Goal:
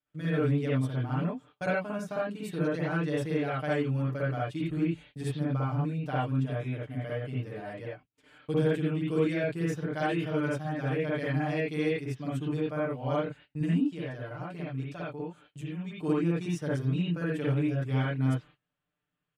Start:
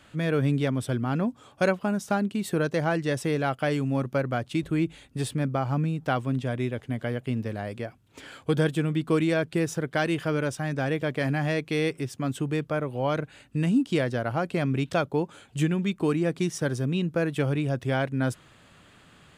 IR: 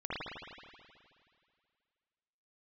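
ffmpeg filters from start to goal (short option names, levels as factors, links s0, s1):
-filter_complex "[0:a]agate=range=0.0447:threshold=0.00708:ratio=16:detection=peak,aecho=1:1:6.7:0.94,asplit=3[s0][s1][s2];[s0]afade=t=out:st=13.8:d=0.02[s3];[s1]acompressor=threshold=0.0251:ratio=2,afade=t=in:st=13.8:d=0.02,afade=t=out:st=15.98:d=0.02[s4];[s2]afade=t=in:st=15.98:d=0.02[s5];[s3][s4][s5]amix=inputs=3:normalize=0[s6];[1:a]atrim=start_sample=2205,atrim=end_sample=4410[s7];[s6][s7]afir=irnorm=-1:irlink=0,volume=0.376"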